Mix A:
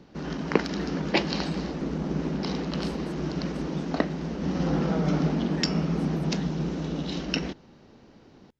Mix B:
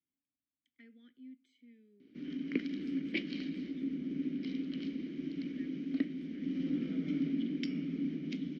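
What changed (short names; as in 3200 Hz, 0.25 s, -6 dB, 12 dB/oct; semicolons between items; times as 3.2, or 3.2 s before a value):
background: entry +2.00 s; master: add vowel filter i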